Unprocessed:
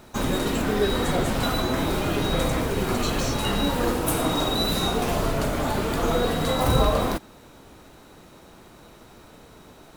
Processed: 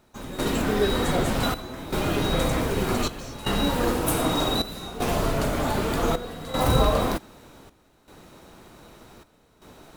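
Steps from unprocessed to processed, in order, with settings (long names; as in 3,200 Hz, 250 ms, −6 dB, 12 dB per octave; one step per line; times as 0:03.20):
gate pattern "..xxxxxx" 78 BPM −12 dB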